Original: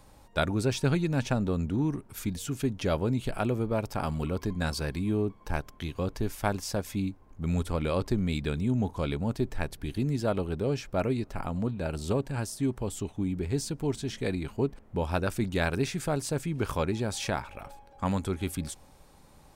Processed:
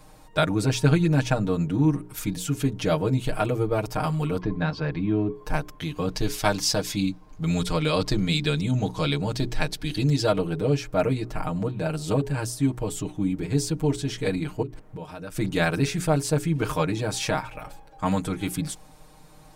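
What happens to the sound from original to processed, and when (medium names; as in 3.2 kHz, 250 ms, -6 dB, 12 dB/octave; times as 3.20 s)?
4.41–5.35 s: Gaussian low-pass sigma 2.3 samples
6.10–10.32 s: peaking EQ 4.5 kHz +10 dB 1.5 oct
14.62–15.35 s: compression 10:1, threshold -37 dBFS
whole clip: hum notches 60/120/180/240/300/360/420 Hz; comb 6.5 ms, depth 99%; trim +2.5 dB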